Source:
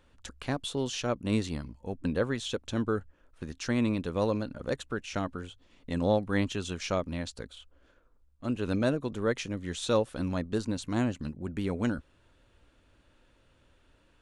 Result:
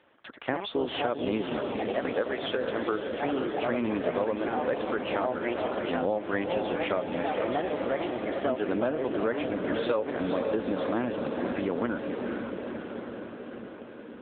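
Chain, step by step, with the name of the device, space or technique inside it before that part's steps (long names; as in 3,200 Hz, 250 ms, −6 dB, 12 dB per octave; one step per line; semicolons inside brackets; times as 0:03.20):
0:01.87–0:02.92: bass and treble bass −13 dB, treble 0 dB
feedback delay with all-pass diffusion 493 ms, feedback 69%, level −7 dB
delay with pitch and tempo change per echo 126 ms, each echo +3 semitones, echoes 2, each echo −6 dB
voicemail (band-pass filter 330–3,000 Hz; downward compressor 10 to 1, threshold −31 dBFS, peak gain reduction 10.5 dB; level +8 dB; AMR narrowband 7.95 kbit/s 8,000 Hz)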